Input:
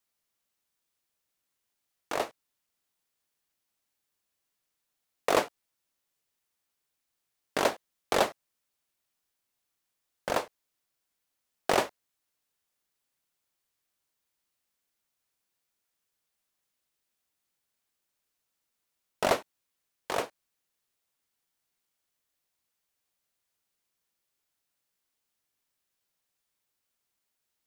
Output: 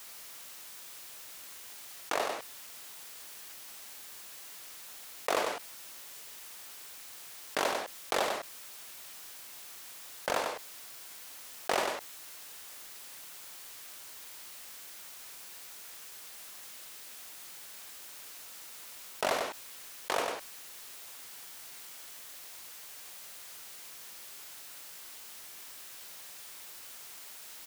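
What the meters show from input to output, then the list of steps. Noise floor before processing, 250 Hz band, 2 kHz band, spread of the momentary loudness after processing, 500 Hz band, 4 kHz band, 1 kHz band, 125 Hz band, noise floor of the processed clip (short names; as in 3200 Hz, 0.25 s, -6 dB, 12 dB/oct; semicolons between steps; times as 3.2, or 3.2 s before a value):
-83 dBFS, -6.0 dB, 0.0 dB, 12 LU, -3.5 dB, +1.0 dB, -2.0 dB, -8.5 dB, -48 dBFS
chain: low shelf 340 Hz -10 dB; on a send: echo 97 ms -12.5 dB; on the sum: fast leveller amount 70%; gain -5.5 dB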